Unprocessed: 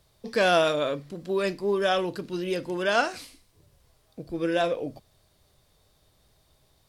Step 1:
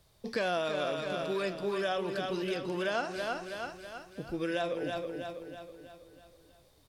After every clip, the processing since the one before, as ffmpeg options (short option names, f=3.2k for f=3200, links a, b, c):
-filter_complex "[0:a]aecho=1:1:324|648|972|1296|1620|1944:0.376|0.188|0.094|0.047|0.0235|0.0117,acrossover=split=1100|6300[a][b][c];[a]acompressor=threshold=-30dB:ratio=4[d];[b]acompressor=threshold=-36dB:ratio=4[e];[c]acompressor=threshold=-59dB:ratio=4[f];[d][e][f]amix=inputs=3:normalize=0,volume=-1.5dB"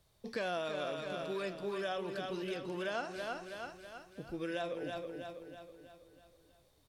-af "bandreject=f=4.9k:w=19,volume=-5.5dB"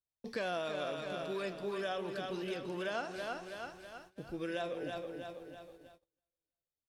-filter_complex "[0:a]asplit=6[a][b][c][d][e][f];[b]adelay=150,afreqshift=41,volume=-21dB[g];[c]adelay=300,afreqshift=82,volume=-25dB[h];[d]adelay=450,afreqshift=123,volume=-29dB[i];[e]adelay=600,afreqshift=164,volume=-33dB[j];[f]adelay=750,afreqshift=205,volume=-37.1dB[k];[a][g][h][i][j][k]amix=inputs=6:normalize=0,agate=range=-33dB:threshold=-55dB:ratio=16:detection=peak"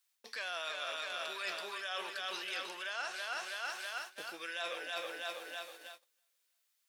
-af "highpass=1.4k,areverse,acompressor=threshold=-54dB:ratio=10,areverse,volume=17.5dB"